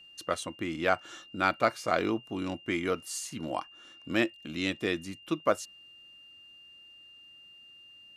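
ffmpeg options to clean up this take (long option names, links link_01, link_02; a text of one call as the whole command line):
ffmpeg -i in.wav -af "bandreject=frequency=2800:width=30" out.wav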